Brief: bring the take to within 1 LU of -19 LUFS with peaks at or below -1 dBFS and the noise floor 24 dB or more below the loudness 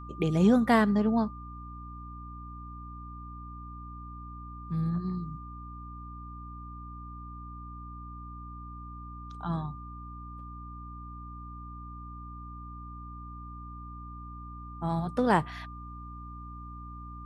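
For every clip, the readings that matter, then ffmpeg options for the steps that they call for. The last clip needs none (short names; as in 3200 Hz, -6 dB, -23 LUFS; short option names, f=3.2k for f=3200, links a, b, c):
hum 60 Hz; harmonics up to 300 Hz; hum level -41 dBFS; steady tone 1200 Hz; tone level -45 dBFS; loudness -34.0 LUFS; peak -11.0 dBFS; loudness target -19.0 LUFS
-> -af "bandreject=f=60:t=h:w=4,bandreject=f=120:t=h:w=4,bandreject=f=180:t=h:w=4,bandreject=f=240:t=h:w=4,bandreject=f=300:t=h:w=4"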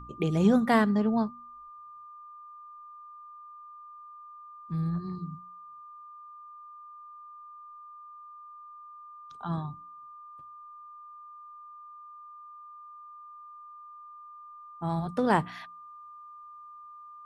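hum none; steady tone 1200 Hz; tone level -45 dBFS
-> -af "bandreject=f=1.2k:w=30"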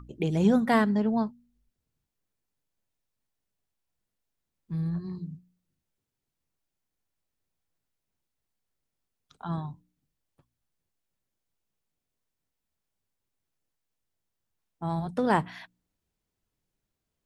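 steady tone none; loudness -28.0 LUFS; peak -11.0 dBFS; loudness target -19.0 LUFS
-> -af "volume=9dB"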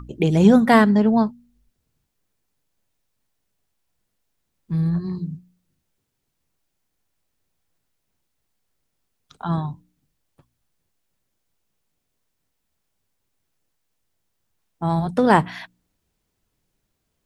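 loudness -19.0 LUFS; peak -2.0 dBFS; noise floor -76 dBFS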